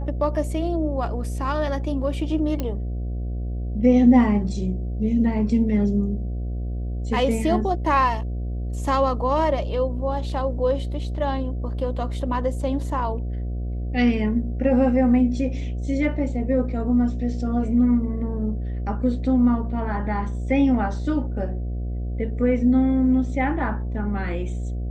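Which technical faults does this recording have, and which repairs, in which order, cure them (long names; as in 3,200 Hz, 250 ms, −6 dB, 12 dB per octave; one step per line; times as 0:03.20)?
mains buzz 60 Hz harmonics 12 −27 dBFS
0:02.60: click −14 dBFS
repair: click removal
hum removal 60 Hz, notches 12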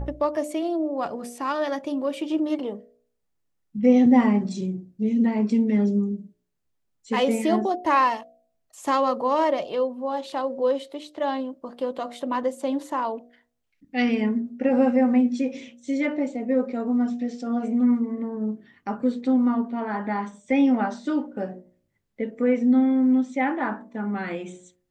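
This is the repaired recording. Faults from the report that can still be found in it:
none of them is left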